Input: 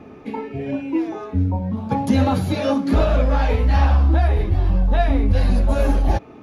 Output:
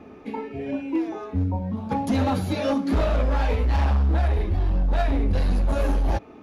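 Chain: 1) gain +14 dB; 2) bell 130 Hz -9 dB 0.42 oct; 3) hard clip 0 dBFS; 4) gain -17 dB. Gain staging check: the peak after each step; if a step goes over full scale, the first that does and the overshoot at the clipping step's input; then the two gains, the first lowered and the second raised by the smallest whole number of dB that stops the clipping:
+8.0, +7.5, 0.0, -17.0 dBFS; step 1, 7.5 dB; step 1 +6 dB, step 4 -9 dB

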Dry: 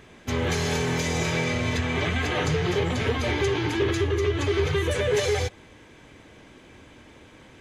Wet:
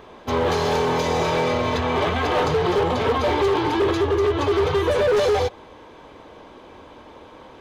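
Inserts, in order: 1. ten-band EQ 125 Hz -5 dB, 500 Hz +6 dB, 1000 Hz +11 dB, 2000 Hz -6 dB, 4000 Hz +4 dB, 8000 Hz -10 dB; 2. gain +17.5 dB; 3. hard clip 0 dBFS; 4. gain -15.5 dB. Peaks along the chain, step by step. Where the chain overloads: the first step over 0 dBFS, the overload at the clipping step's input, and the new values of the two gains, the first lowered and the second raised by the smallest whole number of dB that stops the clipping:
-8.5, +9.0, 0.0, -15.5 dBFS; step 2, 9.0 dB; step 2 +8.5 dB, step 4 -6.5 dB

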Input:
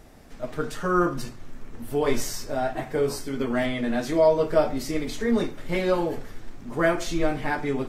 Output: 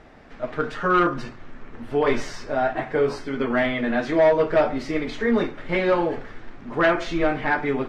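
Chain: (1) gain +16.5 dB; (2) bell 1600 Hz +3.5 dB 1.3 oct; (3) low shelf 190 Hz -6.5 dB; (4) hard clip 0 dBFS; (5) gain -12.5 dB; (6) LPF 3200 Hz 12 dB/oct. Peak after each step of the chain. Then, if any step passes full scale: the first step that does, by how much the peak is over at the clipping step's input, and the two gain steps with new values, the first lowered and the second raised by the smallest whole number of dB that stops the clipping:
+9.0, +10.5, +10.0, 0.0, -12.5, -12.0 dBFS; step 1, 10.0 dB; step 1 +6.5 dB, step 5 -2.5 dB

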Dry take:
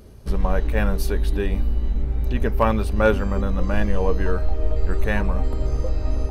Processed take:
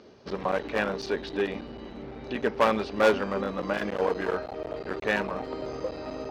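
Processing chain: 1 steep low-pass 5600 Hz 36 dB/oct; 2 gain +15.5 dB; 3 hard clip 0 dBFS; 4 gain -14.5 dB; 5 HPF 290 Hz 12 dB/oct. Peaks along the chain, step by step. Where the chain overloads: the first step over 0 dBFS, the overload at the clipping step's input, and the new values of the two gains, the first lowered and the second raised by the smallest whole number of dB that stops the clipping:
-6.5, +9.0, 0.0, -14.5, -8.0 dBFS; step 2, 9.0 dB; step 2 +6.5 dB, step 4 -5.5 dB

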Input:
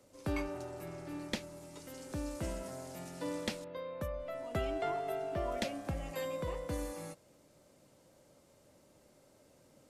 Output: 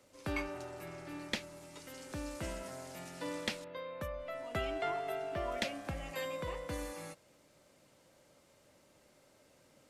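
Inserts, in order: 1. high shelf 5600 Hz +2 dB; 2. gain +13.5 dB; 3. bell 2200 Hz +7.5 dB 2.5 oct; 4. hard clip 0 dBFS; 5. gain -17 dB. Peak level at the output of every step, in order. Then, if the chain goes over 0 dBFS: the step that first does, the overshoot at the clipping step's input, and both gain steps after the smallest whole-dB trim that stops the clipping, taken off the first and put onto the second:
-22.0, -8.5, -4.5, -4.5, -21.5 dBFS; no overload

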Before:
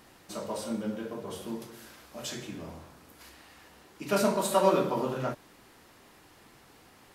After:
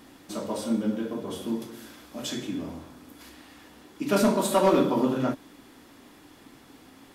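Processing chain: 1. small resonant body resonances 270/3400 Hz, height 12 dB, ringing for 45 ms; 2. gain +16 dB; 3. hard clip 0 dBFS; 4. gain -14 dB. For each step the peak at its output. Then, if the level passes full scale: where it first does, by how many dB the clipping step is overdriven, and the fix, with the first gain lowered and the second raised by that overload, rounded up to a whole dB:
-9.5, +6.5, 0.0, -14.0 dBFS; step 2, 6.5 dB; step 2 +9 dB, step 4 -7 dB

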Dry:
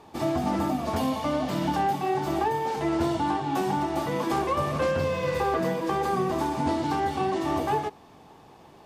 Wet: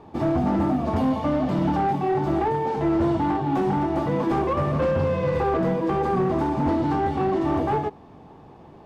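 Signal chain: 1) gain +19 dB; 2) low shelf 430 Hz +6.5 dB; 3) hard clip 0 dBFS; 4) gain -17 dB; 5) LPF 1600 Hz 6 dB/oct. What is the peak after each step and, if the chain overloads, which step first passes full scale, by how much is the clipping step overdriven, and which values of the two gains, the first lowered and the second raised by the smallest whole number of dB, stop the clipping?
+6.0, +10.0, 0.0, -17.0, -17.0 dBFS; step 1, 10.0 dB; step 1 +9 dB, step 4 -7 dB

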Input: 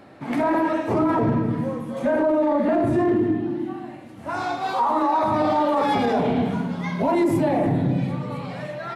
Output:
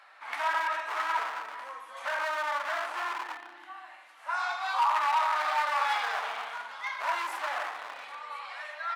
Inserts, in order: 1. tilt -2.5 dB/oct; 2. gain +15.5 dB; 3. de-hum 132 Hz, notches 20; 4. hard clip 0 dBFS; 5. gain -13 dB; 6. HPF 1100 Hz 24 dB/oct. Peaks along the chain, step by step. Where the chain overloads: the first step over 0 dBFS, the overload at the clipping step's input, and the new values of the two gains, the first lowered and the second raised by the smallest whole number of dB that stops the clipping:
-5.5, +10.0, +9.0, 0.0, -13.0, -15.0 dBFS; step 2, 9.0 dB; step 2 +6.5 dB, step 5 -4 dB

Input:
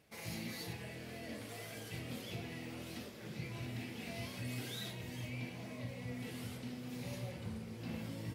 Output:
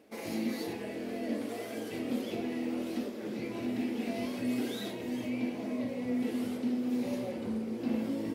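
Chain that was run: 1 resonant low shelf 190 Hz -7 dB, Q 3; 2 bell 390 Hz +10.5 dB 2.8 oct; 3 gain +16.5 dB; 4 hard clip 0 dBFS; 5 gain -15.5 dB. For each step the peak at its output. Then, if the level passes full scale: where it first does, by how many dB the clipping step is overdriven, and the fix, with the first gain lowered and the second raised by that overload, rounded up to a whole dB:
-29.0, -22.0, -5.5, -5.5, -21.0 dBFS; no overload

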